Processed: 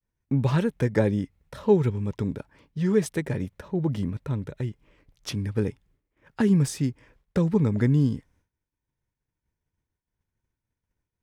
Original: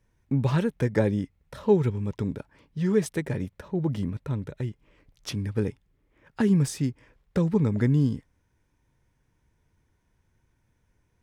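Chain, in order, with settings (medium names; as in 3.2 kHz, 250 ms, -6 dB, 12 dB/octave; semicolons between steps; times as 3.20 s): expander -57 dBFS; trim +1 dB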